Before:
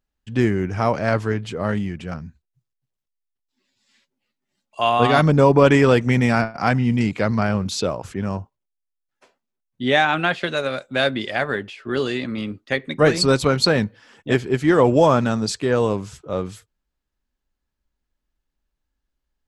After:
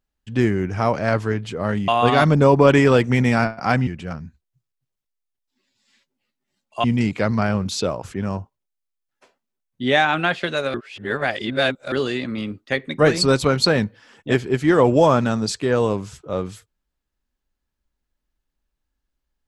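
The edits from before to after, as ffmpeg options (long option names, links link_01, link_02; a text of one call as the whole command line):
ffmpeg -i in.wav -filter_complex "[0:a]asplit=6[link_01][link_02][link_03][link_04][link_05][link_06];[link_01]atrim=end=1.882[link_07];[link_02]atrim=start=4.848:end=6.842[link_08];[link_03]atrim=start=1.878:end=4.852[link_09];[link_04]atrim=start=6.838:end=10.742[link_10];[link_05]atrim=start=10.738:end=11.922,asetpts=PTS-STARTPTS,areverse[link_11];[link_06]atrim=start=11.918[link_12];[link_07][link_08]acrossfade=duration=0.004:curve1=hsin:curve2=hsin[link_13];[link_13][link_09]acrossfade=duration=0.004:curve1=hsin:curve2=hsin[link_14];[link_14][link_10]acrossfade=duration=0.004:curve1=hsin:curve2=hsin[link_15];[link_15][link_11]acrossfade=duration=0.004:curve1=hsin:curve2=hsin[link_16];[link_16][link_12]acrossfade=duration=0.004:curve1=hsin:curve2=hsin" out.wav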